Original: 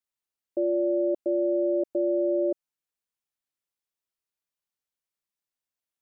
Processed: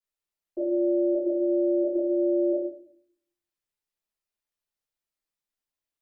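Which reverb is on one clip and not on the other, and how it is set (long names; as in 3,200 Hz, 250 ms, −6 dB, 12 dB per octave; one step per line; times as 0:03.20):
rectangular room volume 71 cubic metres, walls mixed, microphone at 3 metres
level −12 dB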